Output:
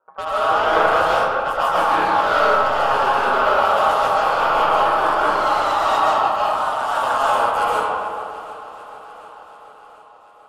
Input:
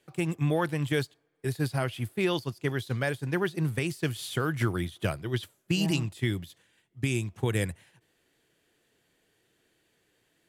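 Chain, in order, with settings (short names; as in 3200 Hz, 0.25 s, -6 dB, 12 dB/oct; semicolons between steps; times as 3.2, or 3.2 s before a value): half-wave gain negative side -7 dB; notch 4600 Hz, Q 5.4; low-pass opened by the level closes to 530 Hz, open at -26.5 dBFS; resonant low shelf 650 Hz +6 dB, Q 1.5; notches 50/100/150/200/250/300/350/400 Hz; in parallel at -0.5 dB: vocal rider 0.5 s; on the sum: ring modulator 950 Hz; soft clip -17.5 dBFS, distortion -10 dB; swung echo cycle 0.741 s, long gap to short 1.5:1, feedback 57%, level -17.5 dB; digital reverb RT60 2.2 s, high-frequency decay 0.45×, pre-delay 95 ms, DRR -8.5 dB; echoes that change speed 84 ms, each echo +1 st, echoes 2; gain -2.5 dB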